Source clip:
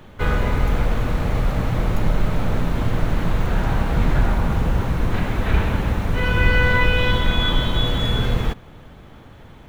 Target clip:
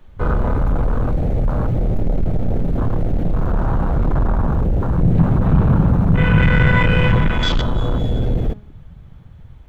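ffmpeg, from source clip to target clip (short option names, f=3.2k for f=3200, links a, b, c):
-filter_complex "[0:a]asoftclip=type=tanh:threshold=-17.5dB,afwtdn=0.0398,asettb=1/sr,asplit=3[a][b][c];[a]atrim=end=4.984[d];[b]atrim=start=4.98:end=7.3,asetpts=PTS-STARTPTS,afade=t=in:d=0.004:c=qsin,afade=t=out:st=2.316:d=0.004:c=qsin,equalizer=f=150:t=o:w=0.86:g=13[e];[c]atrim=start=7.296[f];[d][e]acrossfade=d=0.004:c1=hsin:c2=qsin[g];[g][f]acrossfade=d=0.004:c1=qsin:c2=hsin,bandreject=f=208.5:t=h:w=4,bandreject=f=417:t=h:w=4,bandreject=f=625.5:t=h:w=4,bandreject=f=834:t=h:w=4,bandreject=f=1.0425k:t=h:w=4,bandreject=f=1.251k:t=h:w=4,bandreject=f=1.4595k:t=h:w=4,bandreject=f=1.668k:t=h:w=4,bandreject=f=1.8765k:t=h:w=4,bandreject=f=2.085k:t=h:w=4,bandreject=f=2.2935k:t=h:w=4,bandreject=f=2.502k:t=h:w=4,bandreject=f=2.7105k:t=h:w=4,bandreject=f=2.919k:t=h:w=4,bandreject=f=3.1275k:t=h:w=4,bandreject=f=3.336k:t=h:w=4,bandreject=f=3.5445k:t=h:w=4,bandreject=f=3.753k:t=h:w=4,bandreject=f=3.9615k:t=h:w=4,bandreject=f=4.17k:t=h:w=4,bandreject=f=4.3785k:t=h:w=4,bandreject=f=4.587k:t=h:w=4,bandreject=f=4.7955k:t=h:w=4,bandreject=f=5.004k:t=h:w=4,bandreject=f=5.2125k:t=h:w=4,bandreject=f=5.421k:t=h:w=4,bandreject=f=5.6295k:t=h:w=4,bandreject=f=5.838k:t=h:w=4,bandreject=f=6.0465k:t=h:w=4,bandreject=f=6.255k:t=h:w=4,bandreject=f=6.4635k:t=h:w=4,bandreject=f=6.672k:t=h:w=4,bandreject=f=6.8805k:t=h:w=4,volume=6dB"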